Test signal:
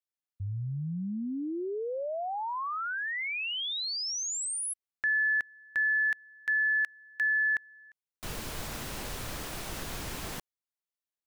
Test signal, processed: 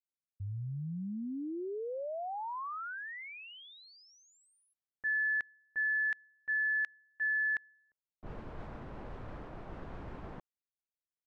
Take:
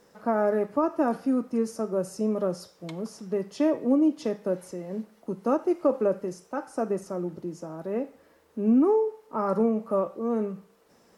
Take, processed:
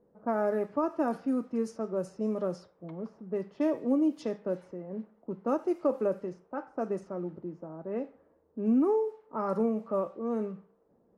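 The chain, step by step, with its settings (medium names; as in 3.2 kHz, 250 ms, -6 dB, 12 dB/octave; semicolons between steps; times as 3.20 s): level-controlled noise filter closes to 530 Hz, open at -21 dBFS; trim -4.5 dB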